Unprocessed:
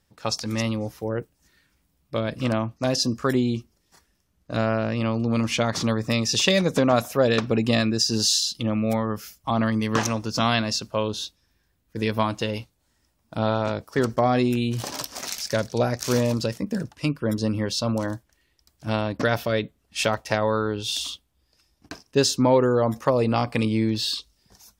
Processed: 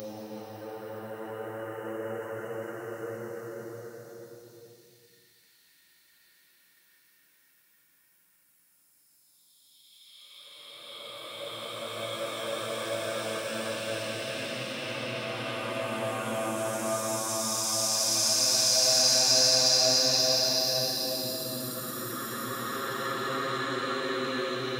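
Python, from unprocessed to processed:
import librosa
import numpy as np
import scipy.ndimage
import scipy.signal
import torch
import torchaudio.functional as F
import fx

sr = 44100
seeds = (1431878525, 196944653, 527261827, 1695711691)

y = fx.spec_delay(x, sr, highs='early', ms=298)
y = fx.paulstretch(y, sr, seeds[0], factor=10.0, window_s=0.5, from_s=0.87)
y = fx.riaa(y, sr, side='recording')
y = y * 10.0 ** (-3.5 / 20.0)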